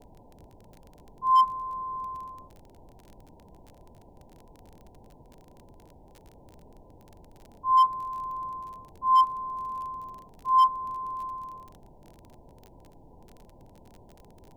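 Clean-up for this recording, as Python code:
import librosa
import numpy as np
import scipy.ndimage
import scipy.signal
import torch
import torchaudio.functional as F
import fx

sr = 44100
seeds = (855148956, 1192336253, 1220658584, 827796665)

y = fx.fix_declip(x, sr, threshold_db=-14.5)
y = fx.fix_declick_ar(y, sr, threshold=6.5)
y = fx.noise_reduce(y, sr, print_start_s=5.85, print_end_s=6.35, reduce_db=23.0)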